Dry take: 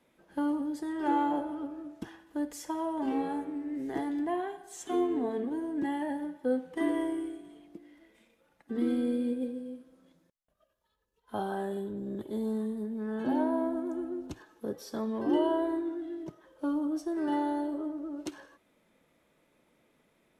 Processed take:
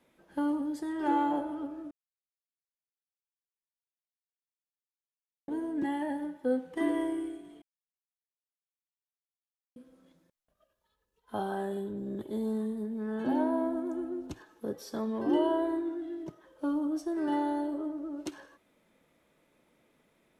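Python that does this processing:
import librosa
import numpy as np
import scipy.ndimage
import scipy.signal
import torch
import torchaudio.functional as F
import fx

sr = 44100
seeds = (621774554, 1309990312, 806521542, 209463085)

y = fx.edit(x, sr, fx.silence(start_s=1.91, length_s=3.57),
    fx.silence(start_s=7.62, length_s=2.14), tone=tone)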